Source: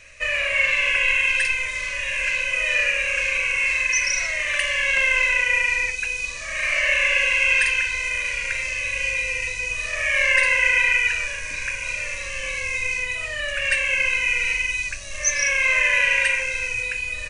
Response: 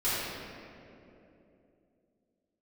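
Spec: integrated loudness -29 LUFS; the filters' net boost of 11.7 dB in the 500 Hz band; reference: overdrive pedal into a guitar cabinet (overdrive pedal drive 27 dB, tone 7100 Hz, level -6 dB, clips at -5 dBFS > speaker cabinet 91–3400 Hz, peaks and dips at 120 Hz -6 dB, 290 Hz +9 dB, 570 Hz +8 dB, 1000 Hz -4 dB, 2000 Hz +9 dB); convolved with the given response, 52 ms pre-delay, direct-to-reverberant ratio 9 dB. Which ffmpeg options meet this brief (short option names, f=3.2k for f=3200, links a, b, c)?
-filter_complex "[0:a]equalizer=f=500:t=o:g=5.5,asplit=2[a][b];[1:a]atrim=start_sample=2205,adelay=52[c];[b][c]afir=irnorm=-1:irlink=0,volume=-20dB[d];[a][d]amix=inputs=2:normalize=0,asplit=2[e][f];[f]highpass=f=720:p=1,volume=27dB,asoftclip=type=tanh:threshold=-5dB[g];[e][g]amix=inputs=2:normalize=0,lowpass=f=7.1k:p=1,volume=-6dB,highpass=91,equalizer=f=120:t=q:w=4:g=-6,equalizer=f=290:t=q:w=4:g=9,equalizer=f=570:t=q:w=4:g=8,equalizer=f=1k:t=q:w=4:g=-4,equalizer=f=2k:t=q:w=4:g=9,lowpass=f=3.4k:w=0.5412,lowpass=f=3.4k:w=1.3066,volume=-23.5dB"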